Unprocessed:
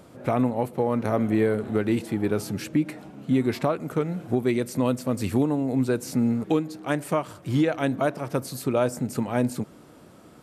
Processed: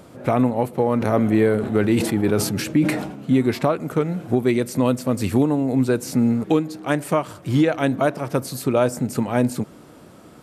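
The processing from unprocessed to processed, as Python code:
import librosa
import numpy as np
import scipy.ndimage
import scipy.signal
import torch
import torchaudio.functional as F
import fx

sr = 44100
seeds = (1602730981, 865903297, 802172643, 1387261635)

y = fx.sustainer(x, sr, db_per_s=60.0, at=(1.0, 3.31), fade=0.02)
y = F.gain(torch.from_numpy(y), 4.5).numpy()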